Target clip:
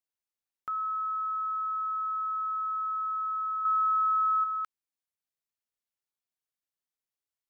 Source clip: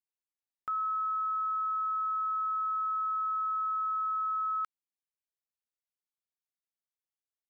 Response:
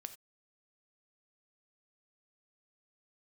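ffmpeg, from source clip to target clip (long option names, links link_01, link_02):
-filter_complex "[0:a]asettb=1/sr,asplit=3[link_01][link_02][link_03];[link_01]atrim=end=3.654[link_04];[link_02]atrim=start=3.65:end=4.44,asetpts=PTS-STARTPTS,afade=type=in:duration=0.004:curve=qsin,afade=type=out:start_time=0.786:duration=0.004:curve=qsin,acontrast=51[link_05];[link_03]atrim=start=4.436[link_06];[link_04][link_05]acrossfade=duration=0.004:curve1=hsin:curve2=qsin[link_07];[link_07][link_06]acrossfade=duration=0.004:curve1=qsin:curve2=hsin"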